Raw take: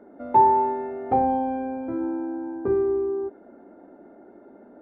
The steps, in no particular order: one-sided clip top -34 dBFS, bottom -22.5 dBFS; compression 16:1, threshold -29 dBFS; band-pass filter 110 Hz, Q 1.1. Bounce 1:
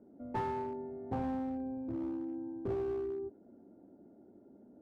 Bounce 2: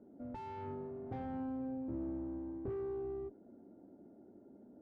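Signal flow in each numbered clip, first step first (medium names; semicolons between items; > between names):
band-pass filter > one-sided clip > compression; one-sided clip > band-pass filter > compression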